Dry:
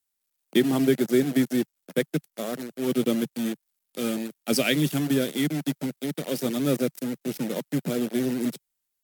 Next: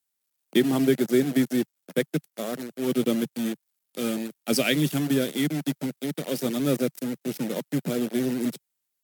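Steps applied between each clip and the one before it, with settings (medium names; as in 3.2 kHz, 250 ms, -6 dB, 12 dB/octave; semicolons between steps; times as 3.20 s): high-pass 52 Hz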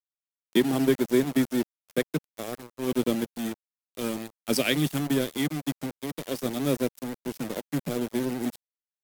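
crossover distortion -34 dBFS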